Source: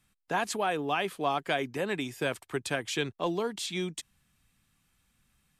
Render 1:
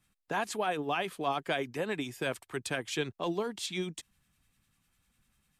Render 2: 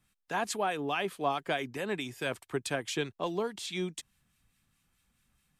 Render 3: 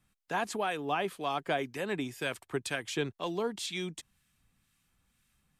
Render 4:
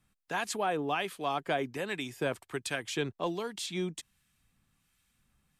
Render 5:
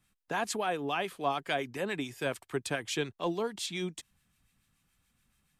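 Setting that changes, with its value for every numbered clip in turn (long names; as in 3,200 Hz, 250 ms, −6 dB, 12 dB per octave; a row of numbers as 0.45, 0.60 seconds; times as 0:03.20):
two-band tremolo in antiphase, speed: 10, 4.7, 2, 1.3, 7 Hertz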